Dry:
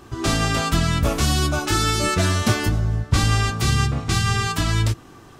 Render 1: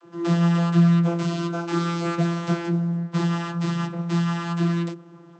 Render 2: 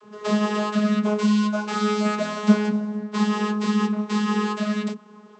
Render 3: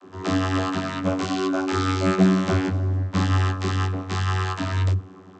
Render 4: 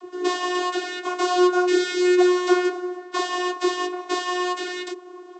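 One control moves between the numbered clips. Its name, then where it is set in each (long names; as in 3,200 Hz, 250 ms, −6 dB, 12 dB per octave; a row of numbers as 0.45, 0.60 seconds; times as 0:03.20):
channel vocoder, frequency: 170, 210, 94, 360 Hertz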